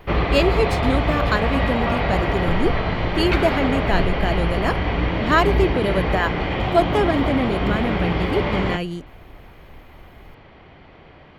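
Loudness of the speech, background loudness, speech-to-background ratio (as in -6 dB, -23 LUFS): -23.5 LUFS, -22.5 LUFS, -1.0 dB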